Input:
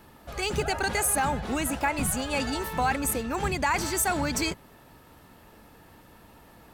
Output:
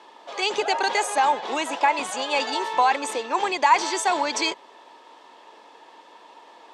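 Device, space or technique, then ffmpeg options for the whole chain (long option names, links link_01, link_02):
phone speaker on a table: -af "highpass=frequency=360:width=0.5412,highpass=frequency=360:width=1.3066,equalizer=frequency=970:width_type=q:width=4:gain=9,equalizer=frequency=1400:width_type=q:width=4:gain=-6,equalizer=frequency=3400:width_type=q:width=4:gain=6,lowpass=frequency=6900:width=0.5412,lowpass=frequency=6900:width=1.3066,volume=4.5dB"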